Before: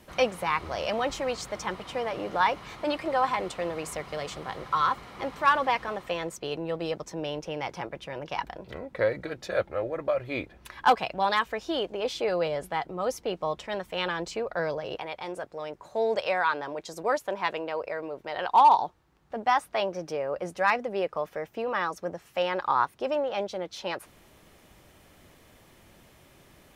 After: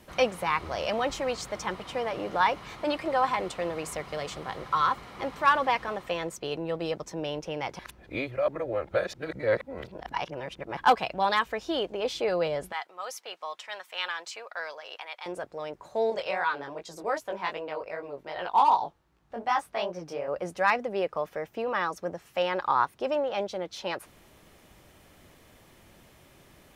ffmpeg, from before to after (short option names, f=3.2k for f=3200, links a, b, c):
-filter_complex "[0:a]asettb=1/sr,asplit=3[a][b][c];[a]atrim=end=12.724[d];[b]atrim=start=12.72:end=15.26,asetpts=PTS-STARTPTS,afade=t=in:d=0.004:c=qsin,afade=t=out:st=2.536:d=0.004:c=qsin,highpass=1.1k[e];[c]atrim=start=15.256[f];[d][e]acrossfade=d=0.004:c1=hsin:c2=qsin[g];[g][f]acrossfade=d=0.004:c1=qsin:c2=hsin,asettb=1/sr,asplit=3[h][i][j];[h]atrim=end=16.104[k];[i]atrim=start=16.1:end=20.28,asetpts=PTS-STARTPTS,afade=t=in:d=0.004:c=qsin,afade=t=out:st=4.176:d=0.004:c=qsin,flanger=delay=16.5:depth=5.9:speed=2.6[l];[j]atrim=start=20.276[m];[k][l]acrossfade=d=0.004:c1=hsin:c2=qsin[n];[n][m]acrossfade=d=0.004:c1=qsin:c2=hsin,asplit=3[o][p][q];[o]atrim=end=7.792[r];[p]atrim=start=7.788:end=10.772,asetpts=PTS-STARTPTS,areverse[s];[q]atrim=start=10.768[t];[r][s]acrossfade=d=0.004:c1=hsin:c2=hsin[u];[u][t]acrossfade=d=0.004:c1=hsin:c2=hsin"